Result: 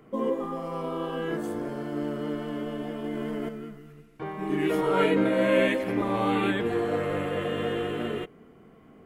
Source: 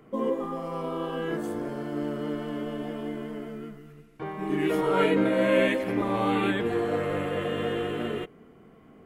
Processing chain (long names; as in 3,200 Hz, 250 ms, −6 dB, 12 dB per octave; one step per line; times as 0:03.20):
0:03.04–0:03.49: envelope flattener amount 100%